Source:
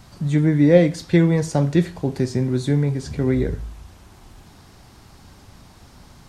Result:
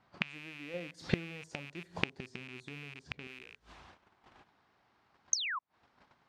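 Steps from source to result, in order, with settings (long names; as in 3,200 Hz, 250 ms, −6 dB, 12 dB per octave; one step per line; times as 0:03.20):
loose part that buzzes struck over −23 dBFS, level −9 dBFS
low-pass that shuts in the quiet parts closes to 2,100 Hz, open at −13 dBFS
noise gate −43 dBFS, range −15 dB
high-pass filter 600 Hz 6 dB per octave, from 0:00.74 220 Hz, from 0:03.27 1,000 Hz
0:05.33–0:05.59: sound drawn into the spectrogram fall 960–6,500 Hz −9 dBFS
gate with flip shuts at −15 dBFS, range −28 dB
level +1 dB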